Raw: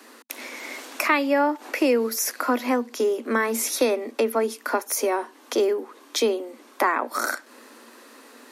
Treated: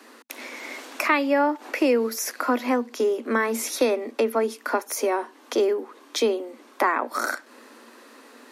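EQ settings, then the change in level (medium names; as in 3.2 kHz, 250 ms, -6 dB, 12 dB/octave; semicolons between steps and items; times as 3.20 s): treble shelf 6.4 kHz -6 dB; 0.0 dB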